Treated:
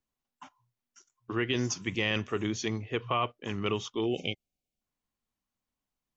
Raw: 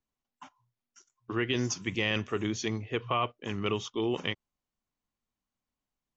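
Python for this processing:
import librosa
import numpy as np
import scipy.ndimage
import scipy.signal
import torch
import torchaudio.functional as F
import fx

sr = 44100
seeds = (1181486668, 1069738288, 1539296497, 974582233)

y = fx.spec_erase(x, sr, start_s=4.06, length_s=0.75, low_hz=800.0, high_hz=2100.0)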